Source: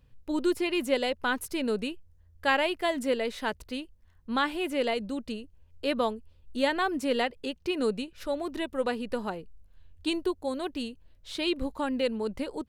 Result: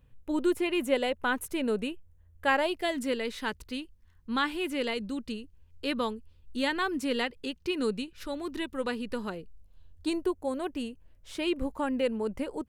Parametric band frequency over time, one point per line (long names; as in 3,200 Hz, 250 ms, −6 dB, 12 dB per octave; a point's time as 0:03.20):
parametric band −10 dB 0.58 octaves
0:02.46 4,800 Hz
0:02.97 650 Hz
0:09.18 650 Hz
0:10.25 4,000 Hz